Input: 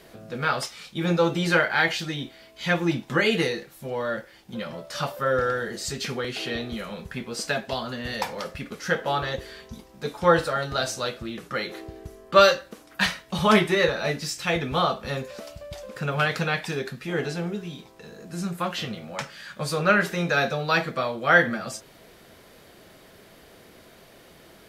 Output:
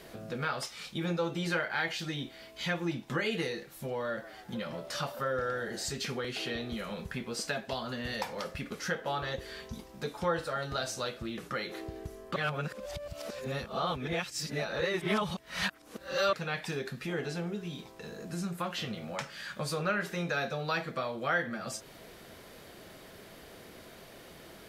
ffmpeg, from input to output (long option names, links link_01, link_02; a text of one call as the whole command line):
ffmpeg -i in.wav -filter_complex "[0:a]asettb=1/sr,asplit=3[link_01][link_02][link_03];[link_01]atrim=end=3.904[link_04];[link_02]atrim=start=3.9:end=5.9,asetpts=PTS-STARTPTS,afade=type=in:duration=0.004:curve=qsin,afade=type=out:start_time=1.996:duration=0.004:curve=qsin,asplit=5[link_05][link_06][link_07][link_08][link_09];[link_06]adelay=139,afreqshift=86,volume=-20.5dB[link_10];[link_07]adelay=278,afreqshift=172,volume=-25.7dB[link_11];[link_08]adelay=417,afreqshift=258,volume=-30.9dB[link_12];[link_09]adelay=556,afreqshift=344,volume=-36.1dB[link_13];[link_05][link_10][link_11][link_12][link_13]amix=inputs=5:normalize=0,atrim=end_sample=88200[link_14];[link_03]atrim=start=5.896[link_15];[link_04][link_14]acrossfade=duration=0.004:curve1=hsin:curve2=qsin[link_16];[link_16][link_15]acrossfade=duration=0.004:curve1=qsin:curve2=hsin,asplit=3[link_17][link_18][link_19];[link_17]atrim=end=12.362[link_20];[link_18]atrim=start=12.358:end=16.332,asetpts=PTS-STARTPTS,areverse[link_21];[link_19]atrim=start=16.328[link_22];[link_20][link_21]acrossfade=duration=0.004:curve1=hsin:curve2=hsin[link_23];[link_23][link_22]acrossfade=duration=0.004:curve1=hsin:curve2=hsin,acompressor=threshold=-37dB:ratio=2" out.wav